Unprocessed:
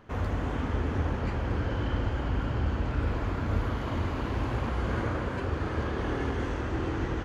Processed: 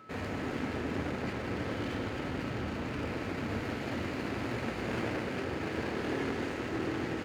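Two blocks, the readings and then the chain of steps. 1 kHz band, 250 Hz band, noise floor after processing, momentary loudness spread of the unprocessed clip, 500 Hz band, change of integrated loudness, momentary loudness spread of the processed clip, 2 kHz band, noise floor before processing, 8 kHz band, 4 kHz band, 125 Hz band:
−4.0 dB, −1.5 dB, −38 dBFS, 2 LU, −1.5 dB, −4.5 dB, 2 LU, 0.0 dB, −34 dBFS, can't be measured, +0.5 dB, −9.5 dB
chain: lower of the sound and its delayed copy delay 0.42 ms
steady tone 1,300 Hz −52 dBFS
high-pass filter 170 Hz 12 dB per octave

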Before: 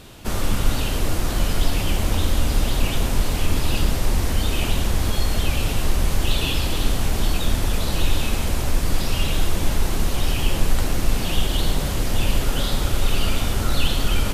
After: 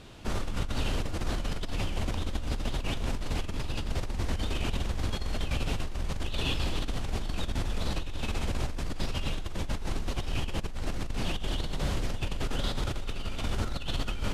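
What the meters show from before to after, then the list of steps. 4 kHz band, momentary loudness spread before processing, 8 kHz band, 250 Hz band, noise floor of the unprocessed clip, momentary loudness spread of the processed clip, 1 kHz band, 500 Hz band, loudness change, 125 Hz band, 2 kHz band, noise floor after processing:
−10.5 dB, 2 LU, −15.0 dB, −9.0 dB, −25 dBFS, 4 LU, −9.5 dB, −9.0 dB, −10.5 dB, −9.5 dB, −9.5 dB, −34 dBFS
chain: high-frequency loss of the air 58 metres
compressor whose output falls as the input rises −21 dBFS, ratio −1
level −8.5 dB

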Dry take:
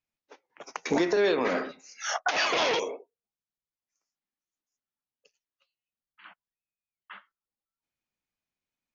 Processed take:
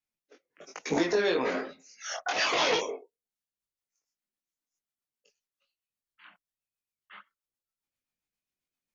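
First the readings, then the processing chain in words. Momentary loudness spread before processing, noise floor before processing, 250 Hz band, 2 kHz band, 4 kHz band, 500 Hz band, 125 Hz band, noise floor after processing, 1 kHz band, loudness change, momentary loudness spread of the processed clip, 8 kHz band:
15 LU, below −85 dBFS, −2.0 dB, −1.5 dB, 0.0 dB, −2.0 dB, −0.5 dB, below −85 dBFS, −2.0 dB, −1.0 dB, 17 LU, can't be measured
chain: rotating-speaker cabinet horn 0.65 Hz, later 7.5 Hz, at 0:03.00
high-shelf EQ 5,800 Hz +5 dB
multi-voice chorus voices 2, 1.1 Hz, delay 21 ms, depth 3 ms
level +2.5 dB

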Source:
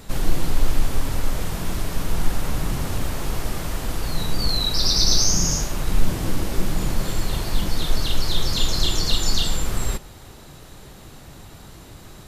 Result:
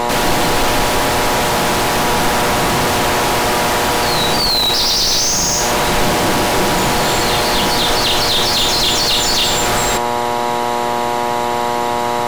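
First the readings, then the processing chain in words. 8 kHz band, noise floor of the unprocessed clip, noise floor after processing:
+9.0 dB, −43 dBFS, −18 dBFS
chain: hum with harmonics 120 Hz, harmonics 8, −31 dBFS −2 dB per octave
mid-hump overdrive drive 34 dB, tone 4,200 Hz, clips at −3.5 dBFS
level −2 dB

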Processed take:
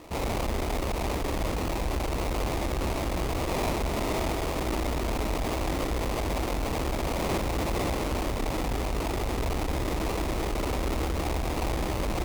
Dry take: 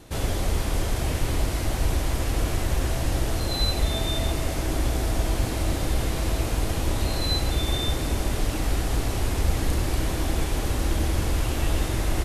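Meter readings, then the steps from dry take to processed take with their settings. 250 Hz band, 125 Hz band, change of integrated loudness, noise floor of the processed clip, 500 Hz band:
−1.0 dB, −6.0 dB, −3.5 dB, −30 dBFS, +1.0 dB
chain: high-pass filter 60 Hz 6 dB per octave
parametric band 130 Hz −12.5 dB 1.3 octaves
sample-rate reduction 1,600 Hz, jitter 20%
tube saturation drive 31 dB, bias 0.45
level +6.5 dB

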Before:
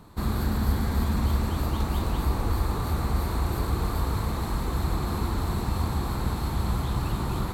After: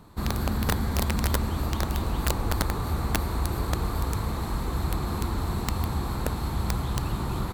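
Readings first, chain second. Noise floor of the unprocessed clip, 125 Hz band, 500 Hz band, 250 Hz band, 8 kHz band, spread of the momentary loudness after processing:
−31 dBFS, −1.5 dB, +0.5 dB, −1.0 dB, +4.5 dB, 3 LU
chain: slap from a distant wall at 27 metres, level −30 dB
wrap-around overflow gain 16 dB
level −1 dB

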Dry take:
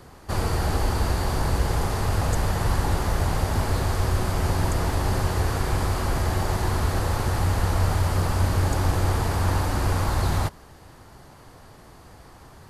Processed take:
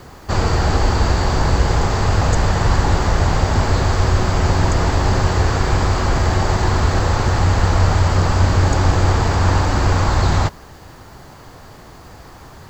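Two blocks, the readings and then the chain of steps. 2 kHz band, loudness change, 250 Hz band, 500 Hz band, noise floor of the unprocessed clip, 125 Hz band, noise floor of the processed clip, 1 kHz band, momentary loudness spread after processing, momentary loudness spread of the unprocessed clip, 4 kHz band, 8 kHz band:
+8.5 dB, +7.5 dB, +7.5 dB, +7.5 dB, −48 dBFS, +7.5 dB, −40 dBFS, +8.0 dB, 2 LU, 2 LU, +8.0 dB, +5.5 dB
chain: Chebyshev low-pass filter 7,800 Hz, order 8
bit-depth reduction 10 bits, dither none
level +8.5 dB

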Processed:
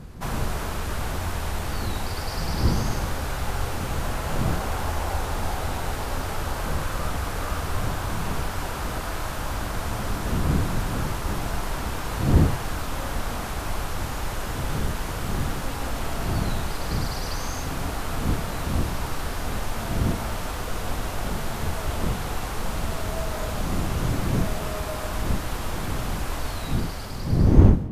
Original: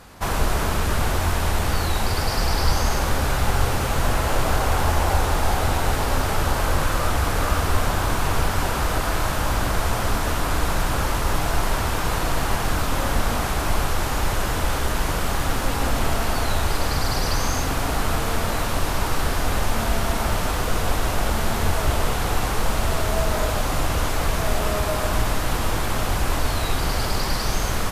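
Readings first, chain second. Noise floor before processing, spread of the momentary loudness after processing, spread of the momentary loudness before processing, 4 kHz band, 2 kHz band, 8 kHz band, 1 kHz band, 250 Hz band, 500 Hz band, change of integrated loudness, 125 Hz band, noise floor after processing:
−24 dBFS, 6 LU, 2 LU, −7.0 dB, −7.0 dB, −7.0 dB, −7.0 dB, 0.0 dB, −5.5 dB, −4.5 dB, −1.0 dB, −31 dBFS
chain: fade-out on the ending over 1.46 s
wind on the microphone 160 Hz −21 dBFS
level −7 dB

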